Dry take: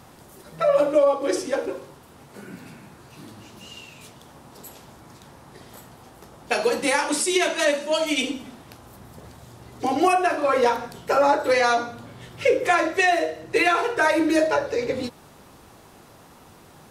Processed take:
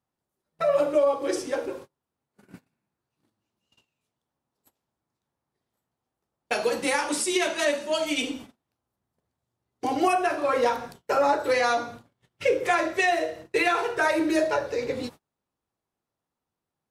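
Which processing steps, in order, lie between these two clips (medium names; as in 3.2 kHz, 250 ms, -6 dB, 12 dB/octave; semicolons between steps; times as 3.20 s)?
gate -37 dBFS, range -34 dB; trim -3.5 dB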